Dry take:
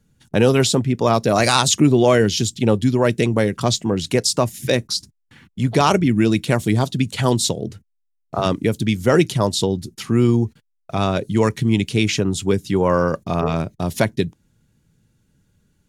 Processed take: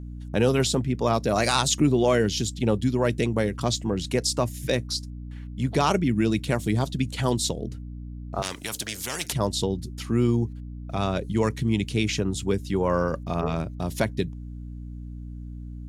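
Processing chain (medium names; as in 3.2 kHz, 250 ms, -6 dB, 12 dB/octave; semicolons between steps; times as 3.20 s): hum 60 Hz, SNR 11 dB; 8.42–9.33 s: spectrum-flattening compressor 4:1; trim -6.5 dB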